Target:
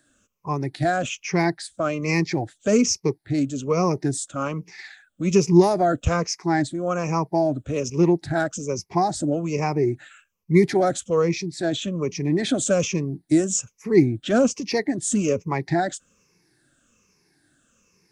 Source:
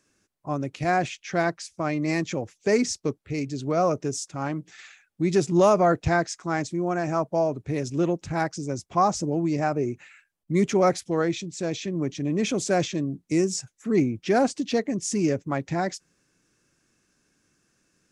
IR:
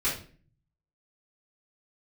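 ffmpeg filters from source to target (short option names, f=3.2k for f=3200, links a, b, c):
-filter_complex "[0:a]afftfilt=real='re*pow(10,15/40*sin(2*PI*(0.81*log(max(b,1)*sr/1024/100)/log(2)-(-1.2)*(pts-256)/sr)))':imag='im*pow(10,15/40*sin(2*PI*(0.81*log(max(b,1)*sr/1024/100)/log(2)-(-1.2)*(pts-256)/sr)))':win_size=1024:overlap=0.75,acrossover=split=410|3000[a][b][c];[b]acompressor=threshold=-23dB:ratio=6[d];[a][d][c]amix=inputs=3:normalize=0,volume=2dB"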